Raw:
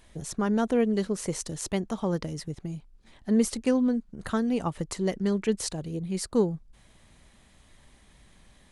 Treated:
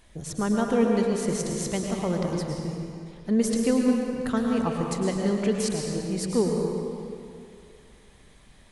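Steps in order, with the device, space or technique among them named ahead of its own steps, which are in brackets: stairwell (reverberation RT60 2.5 s, pre-delay 100 ms, DRR 0 dB)

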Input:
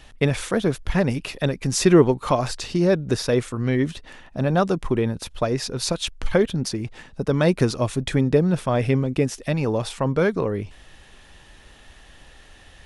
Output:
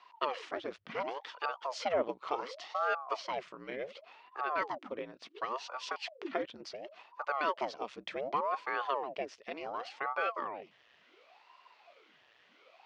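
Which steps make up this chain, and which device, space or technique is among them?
voice changer toy (ring modulator with a swept carrier 540 Hz, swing 90%, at 0.69 Hz; cabinet simulation 580–4500 Hz, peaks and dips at 830 Hz -5 dB, 1.6 kHz -4 dB, 3.8 kHz -5 dB); trim -7.5 dB

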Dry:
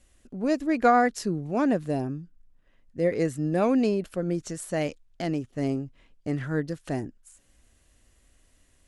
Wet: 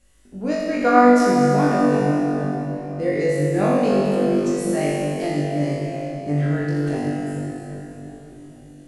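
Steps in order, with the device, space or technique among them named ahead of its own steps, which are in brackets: tunnel (flutter echo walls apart 3.5 m, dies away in 0.76 s; reverberation RT60 4.2 s, pre-delay 48 ms, DRR -0.5 dB); trim -1.5 dB

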